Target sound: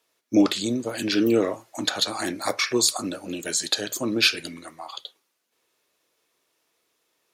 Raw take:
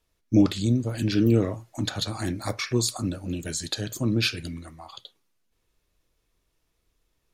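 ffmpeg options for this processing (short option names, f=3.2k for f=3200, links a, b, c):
-af "highpass=380,volume=6.5dB"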